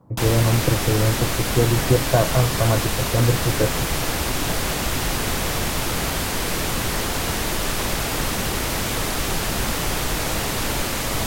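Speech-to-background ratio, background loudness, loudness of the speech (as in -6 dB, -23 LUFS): 1.5 dB, -23.0 LUFS, -21.5 LUFS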